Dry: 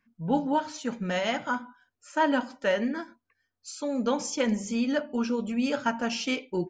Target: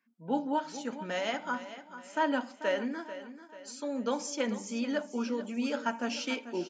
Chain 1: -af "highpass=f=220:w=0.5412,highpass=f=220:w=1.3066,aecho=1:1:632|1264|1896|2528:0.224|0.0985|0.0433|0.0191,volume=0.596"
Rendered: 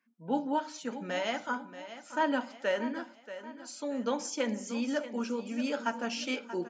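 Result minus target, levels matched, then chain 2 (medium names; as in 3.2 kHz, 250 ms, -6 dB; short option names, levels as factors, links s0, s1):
echo 192 ms late
-af "highpass=f=220:w=0.5412,highpass=f=220:w=1.3066,aecho=1:1:440|880|1320|1760:0.224|0.0985|0.0433|0.0191,volume=0.596"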